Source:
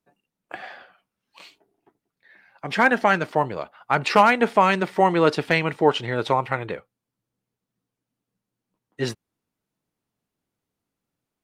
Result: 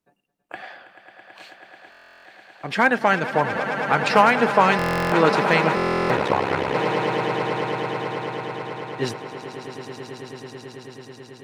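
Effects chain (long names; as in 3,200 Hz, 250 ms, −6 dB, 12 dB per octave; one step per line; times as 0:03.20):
echo that builds up and dies away 109 ms, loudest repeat 8, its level −13 dB
0:06.16–0:06.74: ring modulation 33 Hz
buffer that repeats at 0:01.90/0:04.77/0:05.75, samples 1,024, times 14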